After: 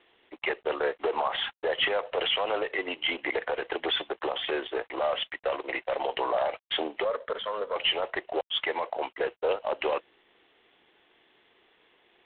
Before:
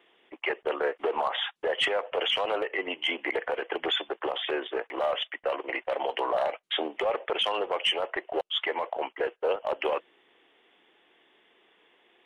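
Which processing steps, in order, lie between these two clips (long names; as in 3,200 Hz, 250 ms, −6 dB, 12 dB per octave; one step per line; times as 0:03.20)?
0:07.05–0:07.76: phaser with its sweep stopped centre 520 Hz, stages 8
G.726 24 kbit/s 8,000 Hz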